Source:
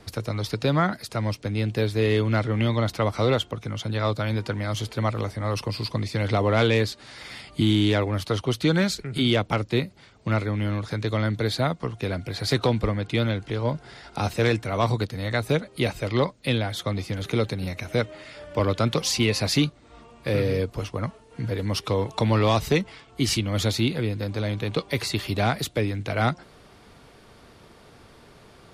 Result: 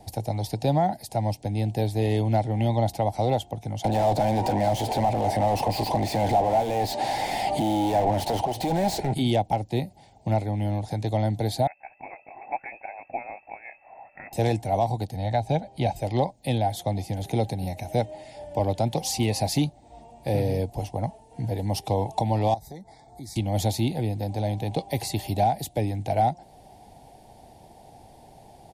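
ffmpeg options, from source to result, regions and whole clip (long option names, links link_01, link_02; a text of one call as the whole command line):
ffmpeg -i in.wav -filter_complex "[0:a]asettb=1/sr,asplit=3[link_01][link_02][link_03];[link_01]atrim=end=3.844[link_04];[link_02]atrim=start=3.84:end=9.14,asetpts=PTS-STARTPTS,afade=type=in:duration=0.004:curve=qsin,afade=type=out:start_time=5.296:duration=0.004:curve=qsin,asplit=2[link_05][link_06];[link_06]highpass=frequency=720:poles=1,volume=35dB,asoftclip=type=tanh:threshold=-10dB[link_07];[link_05][link_07]amix=inputs=2:normalize=0,lowpass=frequency=1400:poles=1,volume=-6dB,acompressor=threshold=-23dB:ratio=2.5:attack=3.2:release=140:knee=1:detection=peak[link_08];[link_03]atrim=start=9.136[link_09];[link_04][link_08]acrossfade=duration=0.004:curve1=hsin:curve2=qsin[link_10];[link_10][link_09]acrossfade=duration=0.004:curve1=qsin:curve2=hsin,asettb=1/sr,asplit=3[link_11][link_12][link_13];[link_11]atrim=end=11.674[link_14];[link_12]atrim=start=11.67:end=14.33,asetpts=PTS-STARTPTS,afade=type=in:duration=0.004:curve=qsin,afade=type=out:start_time=2.656:duration=0.004:curve=qsin,highpass=frequency=1200:poles=1,aeval=exprs='val(0)+0.00178*(sin(2*PI*50*n/s)+sin(2*PI*2*50*n/s)/2+sin(2*PI*3*50*n/s)/3+sin(2*PI*4*50*n/s)/4+sin(2*PI*5*50*n/s)/5)':channel_layout=same,lowpass=frequency=2300:width_type=q:width=0.5098,lowpass=frequency=2300:width_type=q:width=0.6013,lowpass=frequency=2300:width_type=q:width=0.9,lowpass=frequency=2300:width_type=q:width=2.563,afreqshift=-2700[link_15];[link_13]atrim=start=14.326[link_16];[link_14][link_15]acrossfade=duration=0.004:curve1=hsin:curve2=qsin[link_17];[link_17][link_16]acrossfade=duration=0.004:curve1=qsin:curve2=hsin,asettb=1/sr,asplit=3[link_18][link_19][link_20];[link_18]atrim=end=15.164[link_21];[link_19]atrim=start=15.16:end=15.96,asetpts=PTS-STARTPTS,afade=type=in:duration=0.004:curve=qsin,afade=type=out:start_time=0.796:duration=0.004:curve=qsin,lowpass=5300,aecho=1:1:1.3:0.31,atrim=end_sample=35280[link_22];[link_20]atrim=start=15.956[link_23];[link_21][link_22]acrossfade=duration=0.004:curve1=hsin:curve2=qsin[link_24];[link_24][link_23]acrossfade=duration=0.004:curve1=qsin:curve2=hsin,asettb=1/sr,asplit=3[link_25][link_26][link_27];[link_25]atrim=end=22.544[link_28];[link_26]atrim=start=22.54:end=23.36,asetpts=PTS-STARTPTS,afade=type=in:duration=0.004:curve=qsin,afade=type=out:start_time=0.816:duration=0.004:curve=qsin,acompressor=threshold=-47dB:ratio=2:attack=3.2:release=140:knee=1:detection=peak,asuperstop=centerf=2800:order=8:qfactor=2.2[link_29];[link_27]atrim=start=23.356[link_30];[link_28][link_29]acrossfade=duration=0.004:curve1=hsin:curve2=qsin[link_31];[link_31][link_30]acrossfade=duration=0.004:curve1=qsin:curve2=hsin,firequalizer=gain_entry='entry(130,0);entry(420,-8);entry(790,13);entry(1200,-23);entry(1800,-10);entry(8500,2);entry(14000,5)':delay=0.05:min_phase=1,alimiter=limit=-13dB:level=0:latency=1:release=351,equalizer=frequency=340:width=1.8:gain=4" out.wav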